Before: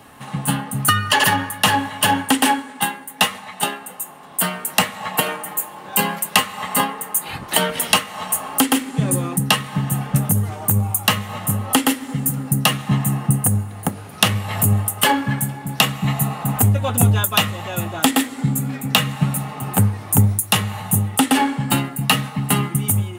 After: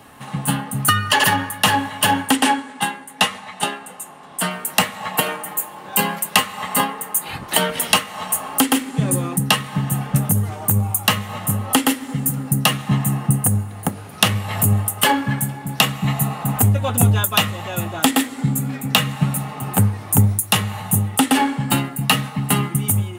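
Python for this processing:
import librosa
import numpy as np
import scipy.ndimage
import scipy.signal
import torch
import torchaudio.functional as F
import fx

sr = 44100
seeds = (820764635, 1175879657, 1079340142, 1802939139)

y = fx.lowpass(x, sr, hz=9600.0, slope=12, at=(2.36, 4.51))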